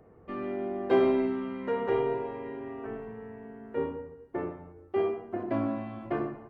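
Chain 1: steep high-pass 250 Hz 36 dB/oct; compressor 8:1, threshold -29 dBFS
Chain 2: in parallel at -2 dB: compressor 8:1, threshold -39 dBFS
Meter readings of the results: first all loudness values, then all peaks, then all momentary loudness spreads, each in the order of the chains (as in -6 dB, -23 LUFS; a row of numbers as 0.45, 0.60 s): -36.5, -30.5 LUFS; -20.0, -10.5 dBFS; 9, 13 LU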